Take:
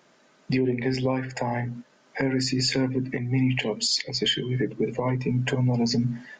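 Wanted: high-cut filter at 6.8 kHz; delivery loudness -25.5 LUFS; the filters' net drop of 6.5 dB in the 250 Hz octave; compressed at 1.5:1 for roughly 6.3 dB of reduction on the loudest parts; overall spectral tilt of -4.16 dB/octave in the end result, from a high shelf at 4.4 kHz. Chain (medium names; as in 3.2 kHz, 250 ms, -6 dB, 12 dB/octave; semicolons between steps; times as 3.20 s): low-pass 6.8 kHz; peaking EQ 250 Hz -7.5 dB; treble shelf 4.4 kHz +6.5 dB; compression 1.5:1, threshold -36 dBFS; trim +6 dB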